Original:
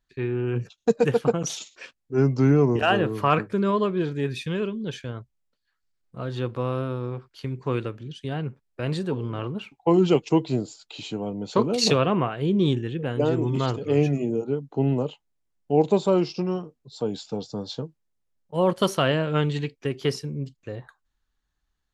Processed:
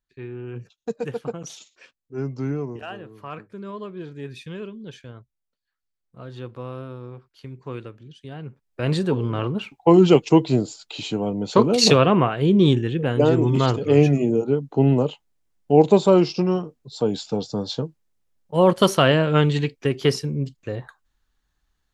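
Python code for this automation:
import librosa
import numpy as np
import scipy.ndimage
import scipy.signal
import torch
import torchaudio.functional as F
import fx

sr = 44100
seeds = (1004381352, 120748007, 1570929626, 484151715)

y = fx.gain(x, sr, db=fx.line((2.51, -8.0), (3.04, -17.0), (4.37, -7.0), (8.38, -7.0), (8.9, 5.5)))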